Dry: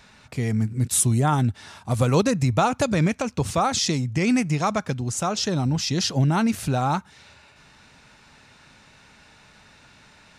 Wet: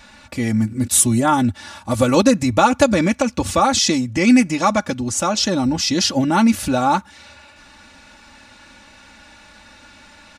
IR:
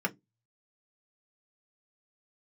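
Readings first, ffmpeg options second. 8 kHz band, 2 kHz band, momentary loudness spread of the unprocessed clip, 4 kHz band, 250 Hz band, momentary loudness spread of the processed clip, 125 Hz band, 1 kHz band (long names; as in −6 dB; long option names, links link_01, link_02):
+6.5 dB, +7.0 dB, 7 LU, +6.5 dB, +7.5 dB, 8 LU, −2.5 dB, +6.5 dB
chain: -af "aecho=1:1:3.5:0.82,volume=4.5dB"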